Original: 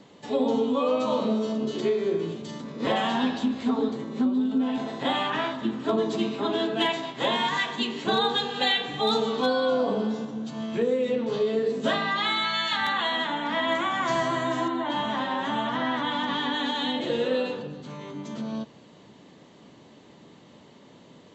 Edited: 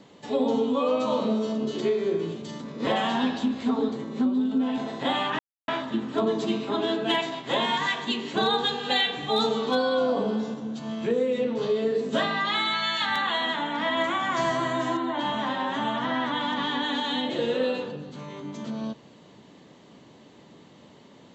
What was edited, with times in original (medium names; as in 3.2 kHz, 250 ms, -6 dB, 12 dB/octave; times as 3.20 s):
5.39 s: insert silence 0.29 s